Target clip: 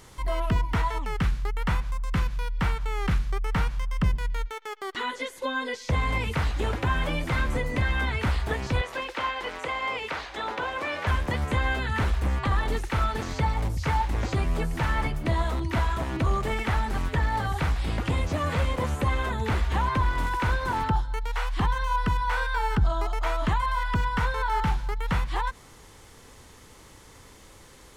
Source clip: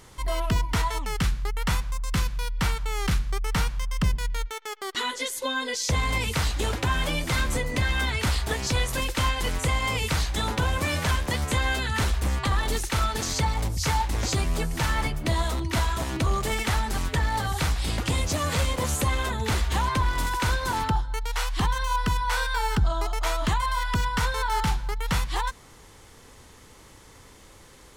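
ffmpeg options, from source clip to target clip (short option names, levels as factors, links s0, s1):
-filter_complex "[0:a]asettb=1/sr,asplit=3[s0][s1][s2];[s0]atrim=end=8.814[s3];[s1]atrim=start=8.81:end=11.07,asetpts=PTS-STARTPTS,afade=t=in:d=0.004:c=qsin,afade=t=out:st=2.256:d=0.004:c=qsin,acrossover=split=320 5700:gain=0.0708 1 0.224[s4][s5][s6];[s4][s5][s6]amix=inputs=3:normalize=0[s7];[s2]atrim=start=11.066[s8];[s3][s7]acrossfade=d=0.004:c1=hsin:c2=qsin[s9];[s9][s8]acrossfade=d=0.004:c1=qsin:c2=hsin,acrossover=split=2800[s10][s11];[s11]acompressor=threshold=0.00398:ratio=4:attack=1:release=60[s12];[s10][s12]amix=inputs=2:normalize=0"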